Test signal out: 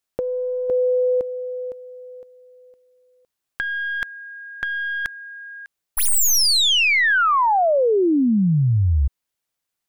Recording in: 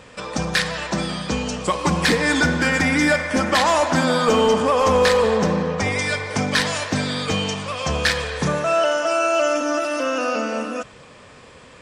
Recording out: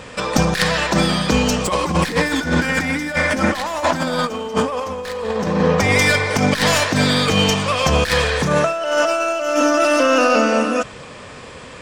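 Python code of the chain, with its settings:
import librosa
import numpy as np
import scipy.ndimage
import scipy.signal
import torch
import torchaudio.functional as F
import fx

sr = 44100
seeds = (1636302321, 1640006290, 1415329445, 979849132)

y = fx.tracing_dist(x, sr, depth_ms=0.049)
y = fx.over_compress(y, sr, threshold_db=-22.0, ratio=-0.5)
y = F.gain(torch.from_numpy(y), 5.5).numpy()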